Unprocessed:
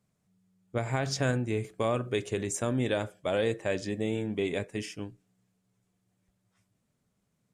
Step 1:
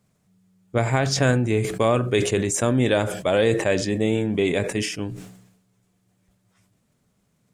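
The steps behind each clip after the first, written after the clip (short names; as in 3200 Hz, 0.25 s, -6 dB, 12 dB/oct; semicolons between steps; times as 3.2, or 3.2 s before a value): sustainer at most 65 dB/s; gain +8.5 dB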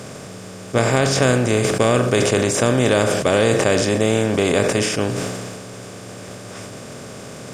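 per-bin compression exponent 0.4; gain -1 dB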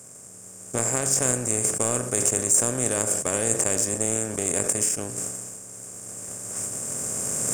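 recorder AGC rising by 5.9 dB/s; power-law curve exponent 1.4; resonant high shelf 5600 Hz +13.5 dB, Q 3; gain -8 dB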